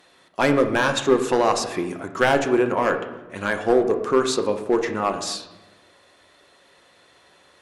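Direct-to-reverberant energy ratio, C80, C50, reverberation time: 5.0 dB, 11.0 dB, 9.5 dB, 1.1 s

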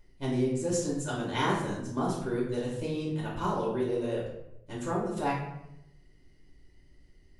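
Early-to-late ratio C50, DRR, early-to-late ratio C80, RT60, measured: 3.0 dB, -6.0 dB, 6.0 dB, 0.85 s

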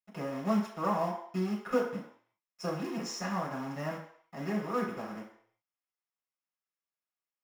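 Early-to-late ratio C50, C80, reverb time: 6.0 dB, 9.0 dB, 0.60 s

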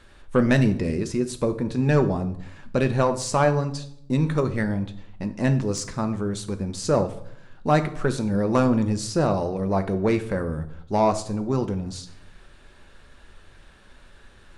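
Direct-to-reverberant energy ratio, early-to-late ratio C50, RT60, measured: 7.5 dB, 13.5 dB, 0.70 s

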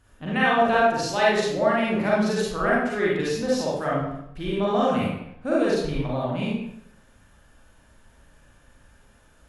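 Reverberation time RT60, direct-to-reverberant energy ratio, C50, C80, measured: 0.75 s, -6.5 dB, -2.0 dB, 3.0 dB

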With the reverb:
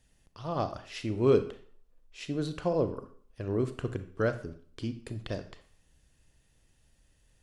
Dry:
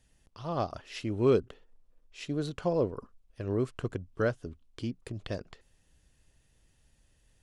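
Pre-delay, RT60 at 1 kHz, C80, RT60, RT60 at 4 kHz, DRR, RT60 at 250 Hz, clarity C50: 29 ms, 0.55 s, 16.0 dB, 0.55 s, 0.45 s, 10.0 dB, 0.50 s, 12.5 dB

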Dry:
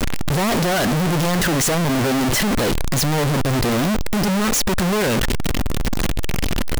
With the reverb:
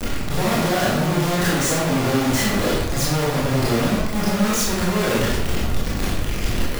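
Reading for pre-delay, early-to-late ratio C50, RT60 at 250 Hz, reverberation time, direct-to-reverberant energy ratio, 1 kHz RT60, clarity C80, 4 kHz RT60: 19 ms, 0.0 dB, 1.0 s, 0.90 s, -7.0 dB, 0.85 s, 3.0 dB, 0.65 s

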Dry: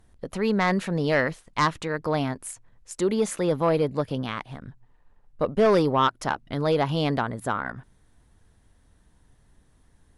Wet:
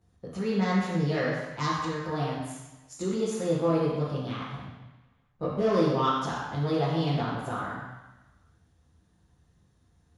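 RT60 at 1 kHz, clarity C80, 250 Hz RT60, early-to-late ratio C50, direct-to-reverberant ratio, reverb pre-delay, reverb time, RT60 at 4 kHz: 1.1 s, 1.5 dB, 1.1 s, -1.0 dB, -10.0 dB, 3 ms, 1.1 s, 1.1 s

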